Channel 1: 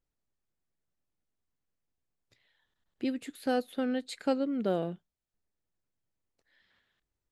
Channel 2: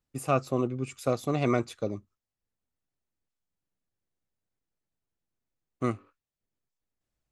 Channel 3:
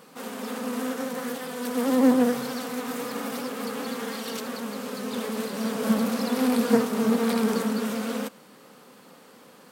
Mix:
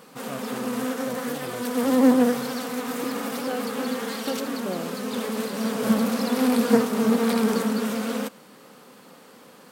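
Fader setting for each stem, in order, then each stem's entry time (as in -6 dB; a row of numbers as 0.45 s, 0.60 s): -2.0 dB, -12.5 dB, +2.0 dB; 0.00 s, 0.00 s, 0.00 s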